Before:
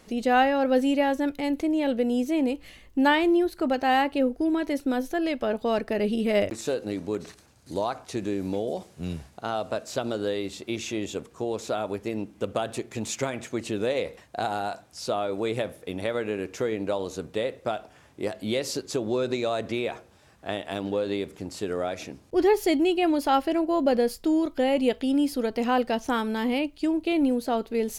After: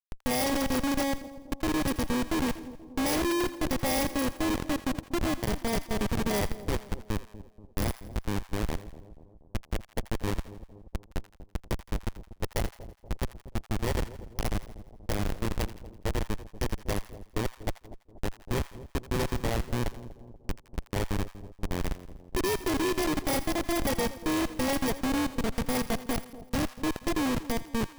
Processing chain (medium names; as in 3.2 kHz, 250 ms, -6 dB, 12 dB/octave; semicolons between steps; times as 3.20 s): bit-reversed sample order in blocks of 32 samples; Schmitt trigger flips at -21.5 dBFS; two-band feedback delay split 810 Hz, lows 240 ms, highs 83 ms, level -14.5 dB